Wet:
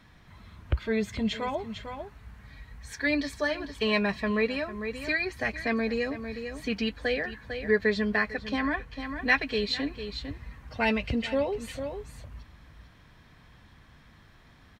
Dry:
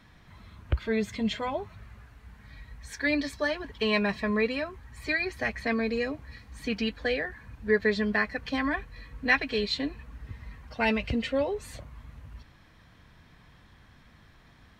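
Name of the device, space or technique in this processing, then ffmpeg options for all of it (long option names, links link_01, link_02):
ducked delay: -filter_complex "[0:a]asplit=3[link_01][link_02][link_03];[link_02]adelay=450,volume=-7.5dB[link_04];[link_03]apad=whole_len=672146[link_05];[link_04][link_05]sidechaincompress=threshold=-35dB:ratio=8:attack=6.4:release=277[link_06];[link_01][link_06]amix=inputs=2:normalize=0,asettb=1/sr,asplit=3[link_07][link_08][link_09];[link_07]atrim=end=8.354[link_10];[link_08]atrim=start=8.35:end=9,asetpts=PTS-STARTPTS,afade=type=in:duration=0.004:curve=qsin,afade=type=out:start_time=0.646:duration=0.004:curve=qsin,highshelf=frequency=8400:gain=-5[link_11];[link_09]atrim=start=8.996[link_12];[link_10][link_11]acrossfade=duration=0.004:curve1=hsin:curve2=qsin[link_13];[link_13][link_12]acrossfade=duration=0.004:curve1=qsin:curve2=hsin"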